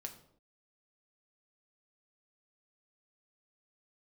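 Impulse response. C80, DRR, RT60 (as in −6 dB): 14.0 dB, 4.0 dB, non-exponential decay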